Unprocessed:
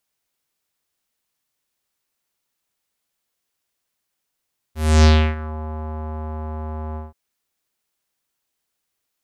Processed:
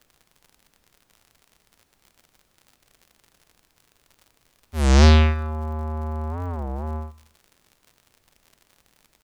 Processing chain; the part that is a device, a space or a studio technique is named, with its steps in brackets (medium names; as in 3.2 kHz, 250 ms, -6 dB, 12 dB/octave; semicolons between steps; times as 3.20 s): warped LP (warped record 33 1/3 rpm, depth 250 cents; crackle 75 per s -39 dBFS; pink noise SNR 42 dB); feedback delay 78 ms, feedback 50%, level -20 dB